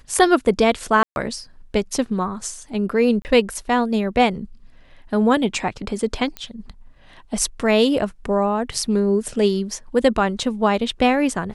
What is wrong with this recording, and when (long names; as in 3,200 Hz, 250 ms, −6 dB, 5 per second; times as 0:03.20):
0:01.03–0:01.16: drop-out 131 ms
0:03.22–0:03.25: drop-out 29 ms
0:06.37: click −14 dBFS